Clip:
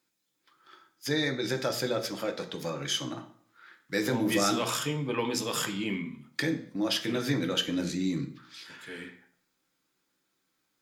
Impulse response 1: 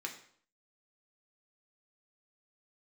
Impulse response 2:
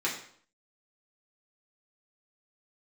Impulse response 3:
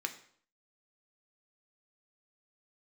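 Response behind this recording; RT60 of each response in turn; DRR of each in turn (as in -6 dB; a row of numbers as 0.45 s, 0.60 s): 3; 0.55 s, 0.55 s, 0.55 s; 1.0 dB, -6.0 dB, 5.0 dB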